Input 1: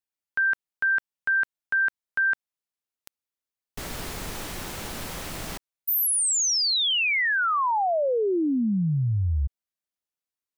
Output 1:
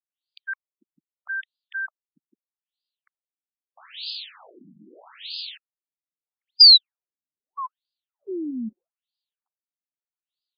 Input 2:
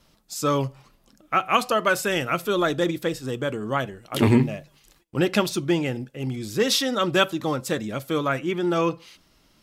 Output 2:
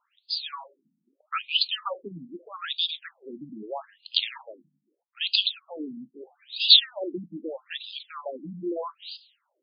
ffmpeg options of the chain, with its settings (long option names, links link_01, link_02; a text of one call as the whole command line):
ffmpeg -i in.wav -af "aexciter=amount=12:drive=4.2:freq=3200,afftfilt=real='re*between(b*sr/1024,210*pow(3600/210,0.5+0.5*sin(2*PI*0.79*pts/sr))/1.41,210*pow(3600/210,0.5+0.5*sin(2*PI*0.79*pts/sr))*1.41)':imag='im*between(b*sr/1024,210*pow(3600/210,0.5+0.5*sin(2*PI*0.79*pts/sr))/1.41,210*pow(3600/210,0.5+0.5*sin(2*PI*0.79*pts/sr))*1.41)':win_size=1024:overlap=0.75,volume=-5dB" out.wav